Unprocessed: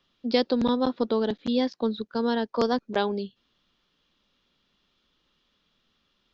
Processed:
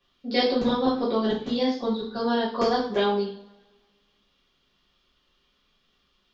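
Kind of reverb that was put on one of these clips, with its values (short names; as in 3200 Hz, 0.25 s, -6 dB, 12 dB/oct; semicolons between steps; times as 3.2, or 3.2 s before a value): two-slope reverb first 0.48 s, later 1.6 s, from -24 dB, DRR -9 dB; gain -6.5 dB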